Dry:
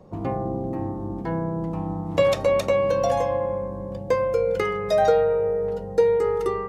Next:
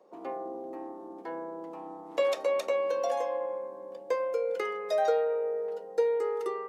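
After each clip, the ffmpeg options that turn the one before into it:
-af "highpass=f=340:w=0.5412,highpass=f=340:w=1.3066,volume=-7.5dB"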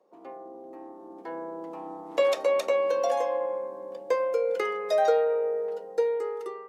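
-af "dynaudnorm=f=490:g=5:m=10dB,volume=-6dB"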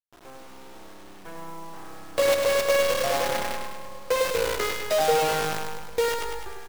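-filter_complex "[0:a]acrusher=bits=5:dc=4:mix=0:aa=0.000001,asplit=2[a][b];[b]aecho=0:1:102|204|306|408|510|612|714|816:0.562|0.326|0.189|0.11|0.0636|0.0369|0.0214|0.0124[c];[a][c]amix=inputs=2:normalize=0"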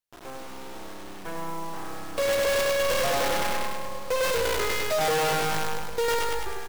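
-af "volume=28dB,asoftclip=hard,volume=-28dB,volume=5.5dB"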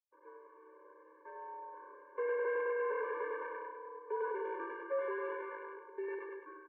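-af "adynamicsmooth=sensitivity=1.5:basefreq=1.1k,highpass=f=550:t=q:w=0.5412,highpass=f=550:t=q:w=1.307,lowpass=f=2k:t=q:w=0.5176,lowpass=f=2k:t=q:w=0.7071,lowpass=f=2k:t=q:w=1.932,afreqshift=-77,afftfilt=real='re*eq(mod(floor(b*sr/1024/300),2),1)':imag='im*eq(mod(floor(b*sr/1024/300),2),1)':win_size=1024:overlap=0.75,volume=-6.5dB"

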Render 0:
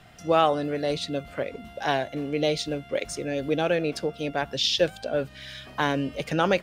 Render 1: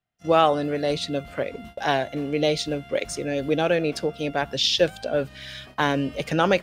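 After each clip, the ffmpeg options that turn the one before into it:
-af "agate=range=-36dB:threshold=-43dB:ratio=16:detection=peak,volume=2.5dB"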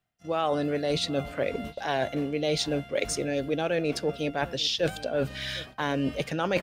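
-filter_complex "[0:a]areverse,acompressor=threshold=-29dB:ratio=6,areverse,asplit=2[a][b];[b]adelay=758,volume=-19dB,highshelf=f=4k:g=-17.1[c];[a][c]amix=inputs=2:normalize=0,volume=4.5dB"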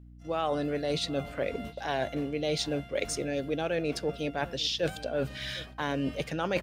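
-af "aeval=exprs='val(0)+0.00501*(sin(2*PI*60*n/s)+sin(2*PI*2*60*n/s)/2+sin(2*PI*3*60*n/s)/3+sin(2*PI*4*60*n/s)/4+sin(2*PI*5*60*n/s)/5)':c=same,volume=-3dB"

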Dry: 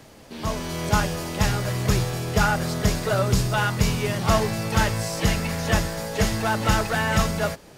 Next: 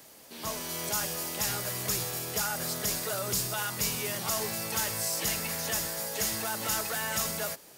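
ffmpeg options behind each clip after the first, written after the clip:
-filter_complex "[0:a]aemphasis=mode=production:type=bsi,acrossover=split=4500[a][b];[a]alimiter=limit=-18.5dB:level=0:latency=1:release=63[c];[c][b]amix=inputs=2:normalize=0,volume=-7dB"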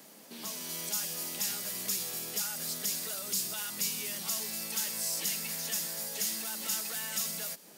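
-filter_complex "[0:a]lowshelf=f=130:t=q:w=3:g=-13.5,acrossover=split=2300[a][b];[a]acompressor=threshold=-44dB:ratio=6[c];[c][b]amix=inputs=2:normalize=0,volume=-1.5dB"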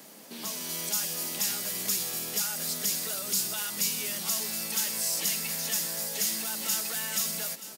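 -af "aecho=1:1:930:0.188,volume=4dB"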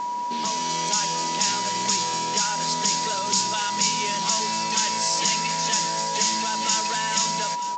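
-af "aeval=exprs='val(0)+0.02*sin(2*PI*970*n/s)':c=same,aresample=16000,aresample=44100,volume=8.5dB"

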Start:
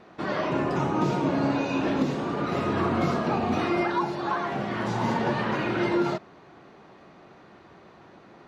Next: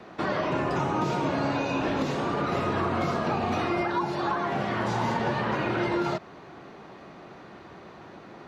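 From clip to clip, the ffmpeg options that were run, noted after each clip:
-filter_complex "[0:a]acrossover=split=130|410|1200[a][b][c][d];[a]acompressor=threshold=-40dB:ratio=4[e];[b]acompressor=threshold=-40dB:ratio=4[f];[c]acompressor=threshold=-34dB:ratio=4[g];[d]acompressor=threshold=-40dB:ratio=4[h];[e][f][g][h]amix=inputs=4:normalize=0,volume=5dB"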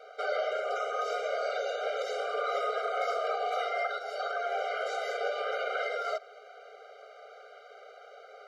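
-af "afftfilt=real='re*eq(mod(floor(b*sr/1024/400),2),1)':imag='im*eq(mod(floor(b*sr/1024/400),2),1)':win_size=1024:overlap=0.75"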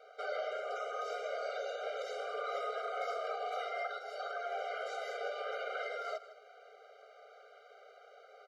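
-af "aecho=1:1:155:0.168,volume=-7dB"

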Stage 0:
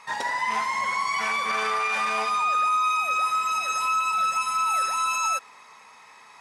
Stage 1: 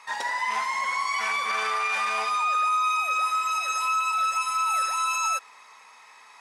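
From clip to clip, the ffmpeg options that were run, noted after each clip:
-af "highpass=f=640:p=1"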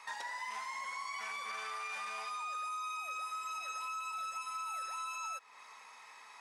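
-filter_complex "[0:a]acrossover=split=660|4800[a][b][c];[a]acompressor=threshold=-56dB:ratio=4[d];[b]acompressor=threshold=-38dB:ratio=4[e];[c]acompressor=threshold=-51dB:ratio=4[f];[d][e][f]amix=inputs=3:normalize=0,volume=-4dB"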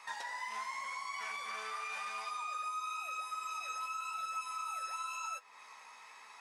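-af "flanger=delay=9.9:depth=8.7:regen=43:speed=0.92:shape=sinusoidal,volume=4dB"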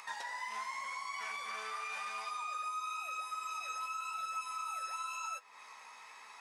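-af "acompressor=mode=upward:threshold=-49dB:ratio=2.5"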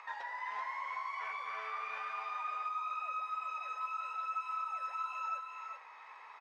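-af "highpass=420,lowpass=2.2k,aecho=1:1:384:0.562,volume=1dB"

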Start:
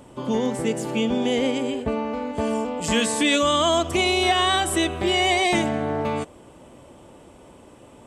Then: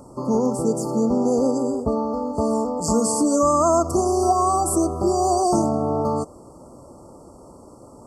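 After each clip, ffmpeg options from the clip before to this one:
-af "afftfilt=real='re*(1-between(b*sr/4096,1400,4400))':imag='im*(1-between(b*sr/4096,1400,4400))':win_size=4096:overlap=0.75,volume=3dB"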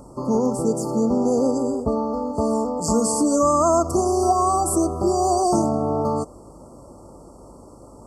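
-af "aeval=exprs='val(0)+0.00282*(sin(2*PI*50*n/s)+sin(2*PI*2*50*n/s)/2+sin(2*PI*3*50*n/s)/3+sin(2*PI*4*50*n/s)/4+sin(2*PI*5*50*n/s)/5)':c=same"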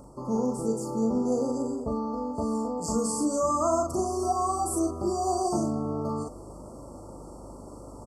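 -filter_complex "[0:a]asplit=2[a][b];[b]adelay=40,volume=-3.5dB[c];[a][c]amix=inputs=2:normalize=0,areverse,acompressor=mode=upward:threshold=-25dB:ratio=2.5,areverse,volume=-9dB"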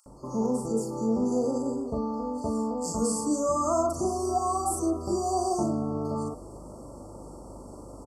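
-filter_complex "[0:a]acrossover=split=1800[a][b];[a]adelay=60[c];[c][b]amix=inputs=2:normalize=0"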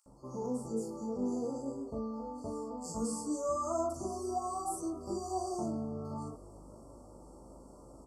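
-af "flanger=delay=15:depth=7.3:speed=0.26,volume=-6.5dB"

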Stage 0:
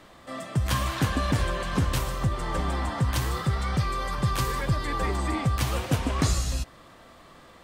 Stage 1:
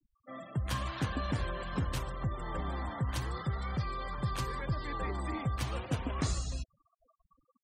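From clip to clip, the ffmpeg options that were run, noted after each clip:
-af "afftfilt=real='re*gte(hypot(re,im),0.0158)':imag='im*gte(hypot(re,im),0.0158)':win_size=1024:overlap=0.75,volume=-8.5dB"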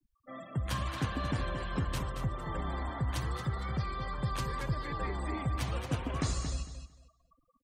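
-af "aecho=1:1:226|452|678:0.376|0.0714|0.0136"

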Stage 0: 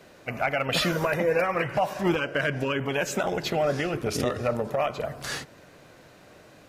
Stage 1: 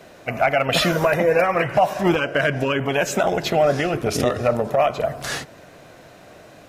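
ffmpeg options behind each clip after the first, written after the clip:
-af "equalizer=f=680:w=5.2:g=6,bandreject=f=4.6k:w=28,volume=5.5dB"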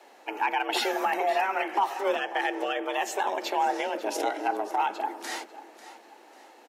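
-af "afreqshift=200,aecho=1:1:544|1088|1632:0.158|0.0571|0.0205,volume=-8.5dB"

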